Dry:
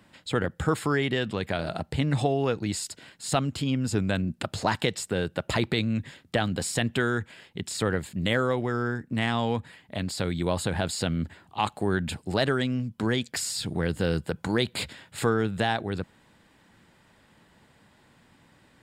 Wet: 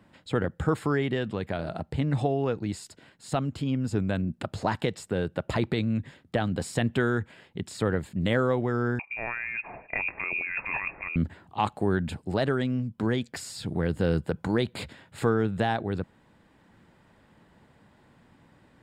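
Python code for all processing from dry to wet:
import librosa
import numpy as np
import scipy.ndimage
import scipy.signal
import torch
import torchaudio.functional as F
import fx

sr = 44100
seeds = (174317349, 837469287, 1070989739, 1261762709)

y = fx.chain(x, sr, fx.freq_invert(carrier_hz=2600),
    fx.over_compress(threshold_db=-32.0, ratio=-1.0),
    fx.echo_single(ms=154, db=-24.0), at=(8.99, 11.16))
y = fx.high_shelf(y, sr, hz=2000.0, db=-10.0)
y = fx.rider(y, sr, range_db=10, speed_s=2.0)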